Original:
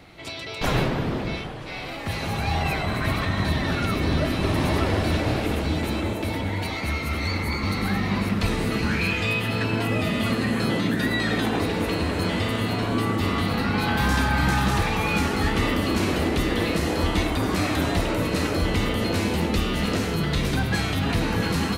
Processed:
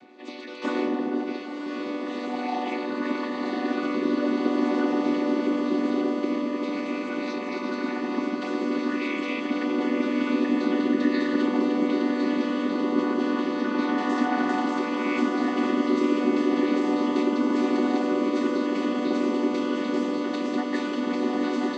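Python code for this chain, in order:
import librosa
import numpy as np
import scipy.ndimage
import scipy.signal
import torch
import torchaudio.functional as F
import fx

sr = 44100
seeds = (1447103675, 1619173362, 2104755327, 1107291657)

y = fx.chord_vocoder(x, sr, chord='minor triad', root=59)
y = fx.echo_diffused(y, sr, ms=1039, feedback_pct=57, wet_db=-5.0)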